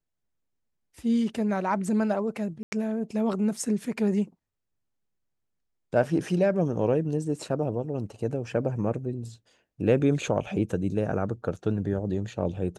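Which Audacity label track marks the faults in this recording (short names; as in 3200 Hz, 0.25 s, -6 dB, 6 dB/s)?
2.630000	2.720000	gap 90 ms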